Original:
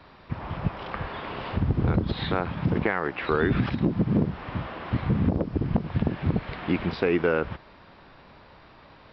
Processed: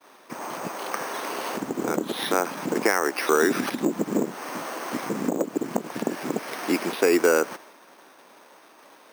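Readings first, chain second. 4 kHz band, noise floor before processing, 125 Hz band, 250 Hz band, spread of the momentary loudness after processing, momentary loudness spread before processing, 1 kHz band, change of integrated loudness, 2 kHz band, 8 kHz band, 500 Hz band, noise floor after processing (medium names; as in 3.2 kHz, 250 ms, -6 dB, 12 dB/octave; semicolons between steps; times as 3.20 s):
+5.0 dB, -52 dBFS, -15.5 dB, -0.5 dB, 12 LU, 10 LU, +4.0 dB, +1.0 dB, +3.5 dB, no reading, +4.5 dB, -53 dBFS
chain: high-pass 270 Hz 24 dB/octave; expander -48 dBFS; careless resampling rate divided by 6×, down none, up hold; trim +4.5 dB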